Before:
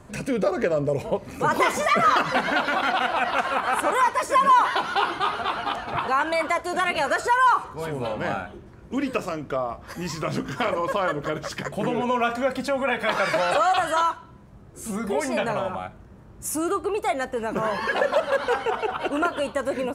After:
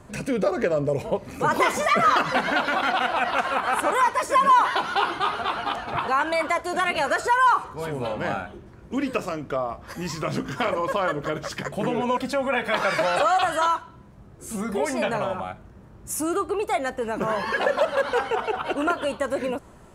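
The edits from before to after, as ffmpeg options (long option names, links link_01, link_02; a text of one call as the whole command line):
ffmpeg -i in.wav -filter_complex "[0:a]asplit=2[link_01][link_02];[link_01]atrim=end=12.172[link_03];[link_02]atrim=start=12.518[link_04];[link_03][link_04]acrossfade=duration=0.004:curve1=hsin:curve2=hsin" out.wav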